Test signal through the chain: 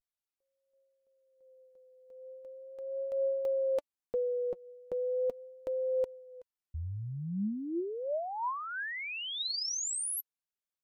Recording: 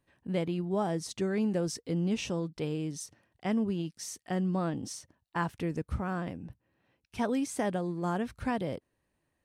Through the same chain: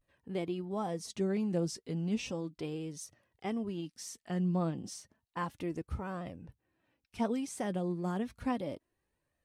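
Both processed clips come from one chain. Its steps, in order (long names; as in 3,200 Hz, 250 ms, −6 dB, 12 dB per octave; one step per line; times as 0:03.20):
pitch vibrato 0.39 Hz 47 cents
flanger 0.32 Hz, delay 1.5 ms, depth 4.4 ms, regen +45%
dynamic equaliser 1,600 Hz, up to −5 dB, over −58 dBFS, Q 3.3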